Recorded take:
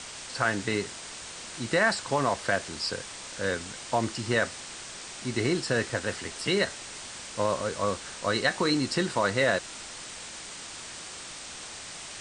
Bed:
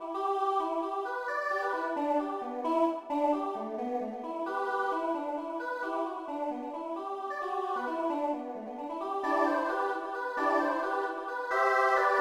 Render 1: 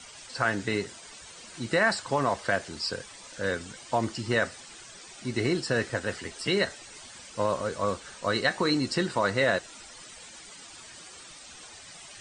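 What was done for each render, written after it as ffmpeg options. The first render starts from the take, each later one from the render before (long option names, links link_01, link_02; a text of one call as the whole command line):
ffmpeg -i in.wav -af "afftdn=noise_reduction=12:noise_floor=-42" out.wav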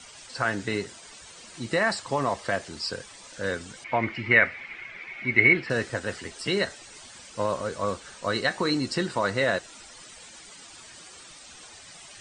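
ffmpeg -i in.wav -filter_complex "[0:a]asettb=1/sr,asplit=3[link_01][link_02][link_03];[link_01]atrim=end=1.514[link_04];[link_02]atrim=start=1.51:end=2.67,asetpts=PTS-STARTPTS,afade=type=in:duration=0.004:curve=qsin,afade=type=out:start_time=1.156:duration=0.004:curve=qsin,bandreject=frequency=1500:width=11[link_05];[link_03]atrim=start=2.666[link_06];[link_04][link_05]acrossfade=duration=0.004:curve1=hsin:curve2=qsin[link_07];[link_07][link_06]acrossfade=duration=0.004:curve1=qsin:curve2=hsin,asettb=1/sr,asplit=3[link_08][link_09][link_10];[link_08]atrim=end=3.844[link_11];[link_09]atrim=start=3.84:end=5.7,asetpts=PTS-STARTPTS,afade=type=in:duration=0.004:curve=qsin,afade=type=out:start_time=1.856:duration=0.004:curve=qsin,lowpass=frequency=2200:width_type=q:width=12[link_12];[link_10]atrim=start=5.696[link_13];[link_11][link_12]acrossfade=duration=0.004:curve1=hsin:curve2=qsin[link_14];[link_14][link_13]acrossfade=duration=0.004:curve1=qsin:curve2=hsin" out.wav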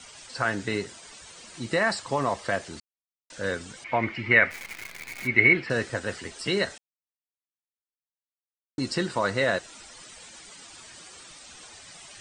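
ffmpeg -i in.wav -filter_complex "[0:a]asplit=3[link_01][link_02][link_03];[link_01]afade=type=out:start_time=4.5:duration=0.02[link_04];[link_02]acrusher=bits=7:dc=4:mix=0:aa=0.000001,afade=type=in:start_time=4.5:duration=0.02,afade=type=out:start_time=5.26:duration=0.02[link_05];[link_03]afade=type=in:start_time=5.26:duration=0.02[link_06];[link_04][link_05][link_06]amix=inputs=3:normalize=0,asplit=5[link_07][link_08][link_09][link_10][link_11];[link_07]atrim=end=2.8,asetpts=PTS-STARTPTS,afade=type=out:start_time=2.796:duration=0.004:curve=hsin[link_12];[link_08]atrim=start=2.8:end=3.3,asetpts=PTS-STARTPTS,volume=0[link_13];[link_09]atrim=start=3.3:end=6.78,asetpts=PTS-STARTPTS,afade=type=in:duration=0.004:curve=hsin,afade=type=out:start_time=3.476:duration=0.004:curve=hsin[link_14];[link_10]atrim=start=6.78:end=8.78,asetpts=PTS-STARTPTS,volume=0[link_15];[link_11]atrim=start=8.78,asetpts=PTS-STARTPTS,afade=type=in:duration=0.004:curve=hsin[link_16];[link_12][link_13][link_14][link_15][link_16]concat=n=5:v=0:a=1" out.wav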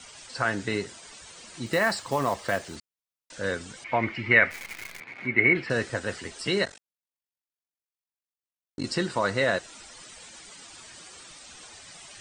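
ffmpeg -i in.wav -filter_complex "[0:a]asettb=1/sr,asplit=3[link_01][link_02][link_03];[link_01]atrim=end=1.664[link_04];[link_02]atrim=start=1.66:end=2.76,asetpts=PTS-STARTPTS,afade=type=in:duration=0.004:curve=qsin,afade=type=out:start_time=1.096:duration=0.004:curve=qsin,acrusher=bits=5:mode=log:mix=0:aa=0.000001[link_05];[link_03]atrim=start=2.756[link_06];[link_04][link_05]acrossfade=duration=0.004:curve1=hsin:curve2=qsin[link_07];[link_07][link_06]acrossfade=duration=0.004:curve1=qsin:curve2=hsin,asplit=3[link_08][link_09][link_10];[link_08]afade=type=out:start_time=4.99:duration=0.02[link_11];[link_09]highpass=120,lowpass=2300,afade=type=in:start_time=4.99:duration=0.02,afade=type=out:start_time=5.54:duration=0.02[link_12];[link_10]afade=type=in:start_time=5.54:duration=0.02[link_13];[link_11][link_12][link_13]amix=inputs=3:normalize=0,asettb=1/sr,asplit=3[link_14][link_15][link_16];[link_14]atrim=end=6.654[link_17];[link_15]atrim=start=6.65:end=8.84,asetpts=PTS-STARTPTS,afade=type=in:duration=0.004:curve=qsin,afade=type=out:start_time=2.186:duration=0.004:curve=qsin,tremolo=f=47:d=0.947[link_18];[link_16]atrim=start=8.836[link_19];[link_17][link_18]acrossfade=duration=0.004:curve1=hsin:curve2=qsin[link_20];[link_20][link_19]acrossfade=duration=0.004:curve1=qsin:curve2=hsin" out.wav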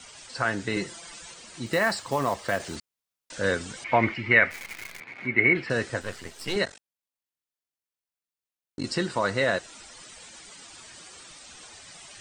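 ffmpeg -i in.wav -filter_complex "[0:a]asettb=1/sr,asplit=3[link_01][link_02][link_03];[link_01]atrim=end=0.764[link_04];[link_02]atrim=start=0.76:end=1.34,asetpts=PTS-STARTPTS,afade=type=in:duration=0.004:curve=qsin,afade=type=out:start_time=0.576:duration=0.004:curve=qsin,aecho=1:1:5.9:0.97,atrim=end_sample=25578[link_05];[link_03]atrim=start=1.336[link_06];[link_04][link_05]acrossfade=duration=0.004:curve1=hsin:curve2=qsin[link_07];[link_07][link_06]acrossfade=duration=0.004:curve1=qsin:curve2=hsin,asettb=1/sr,asplit=3[link_08][link_09][link_10];[link_08]atrim=end=6.014[link_11];[link_09]atrim=start=6.01:end=6.56,asetpts=PTS-STARTPTS,afade=type=in:duration=0.004:curve=qsin,afade=type=out:start_time=0.546:duration=0.004:curve=qsin,aeval=exprs='if(lt(val(0),0),0.251*val(0),val(0))':channel_layout=same[link_12];[link_10]atrim=start=6.556[link_13];[link_11][link_12]acrossfade=duration=0.004:curve1=hsin:curve2=qsin[link_14];[link_14][link_13]acrossfade=duration=0.004:curve1=qsin:curve2=hsin,asplit=3[link_15][link_16][link_17];[link_15]atrim=end=2.602[link_18];[link_16]atrim=start=2.598:end=4.142,asetpts=PTS-STARTPTS,volume=4dB[link_19];[link_17]atrim=start=4.138[link_20];[link_18][link_19]acrossfade=duration=0.004:curve1=hsin:curve2=hsin[link_21];[link_21][link_20]acrossfade=duration=0.004:curve1=hsin:curve2=hsin" out.wav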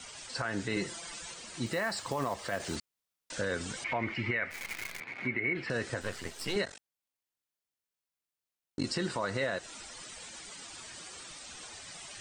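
ffmpeg -i in.wav -af "acompressor=threshold=-26dB:ratio=2.5,alimiter=limit=-21.5dB:level=0:latency=1:release=84" out.wav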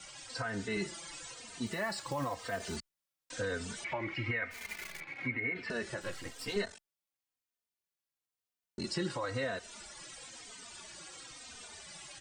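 ffmpeg -i in.wav -filter_complex "[0:a]asplit=2[link_01][link_02];[link_02]adelay=3.1,afreqshift=-1[link_03];[link_01][link_03]amix=inputs=2:normalize=1" out.wav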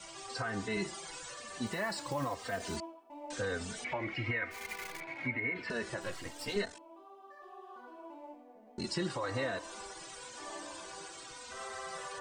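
ffmpeg -i in.wav -i bed.wav -filter_complex "[1:a]volume=-18dB[link_01];[0:a][link_01]amix=inputs=2:normalize=0" out.wav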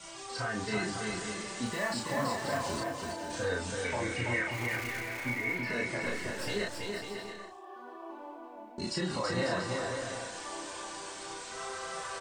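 ffmpeg -i in.wav -filter_complex "[0:a]asplit=2[link_01][link_02];[link_02]adelay=33,volume=-2dB[link_03];[link_01][link_03]amix=inputs=2:normalize=0,asplit=2[link_04][link_05];[link_05]aecho=0:1:330|544.5|683.9|774.6|833.5:0.631|0.398|0.251|0.158|0.1[link_06];[link_04][link_06]amix=inputs=2:normalize=0" out.wav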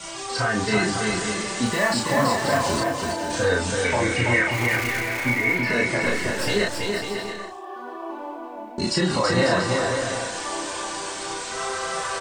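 ffmpeg -i in.wav -af "volume=11.5dB" out.wav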